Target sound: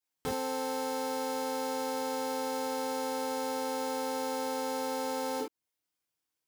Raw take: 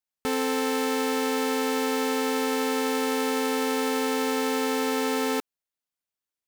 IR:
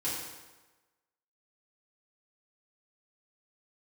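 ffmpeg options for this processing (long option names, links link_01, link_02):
-filter_complex "[0:a]acrossover=split=1000|2700[link_01][link_02][link_03];[link_01]acompressor=threshold=-35dB:ratio=4[link_04];[link_02]acompressor=threshold=-49dB:ratio=4[link_05];[link_03]acompressor=threshold=-45dB:ratio=4[link_06];[link_04][link_05][link_06]amix=inputs=3:normalize=0[link_07];[1:a]atrim=start_sample=2205,atrim=end_sample=3528[link_08];[link_07][link_08]afir=irnorm=-1:irlink=0"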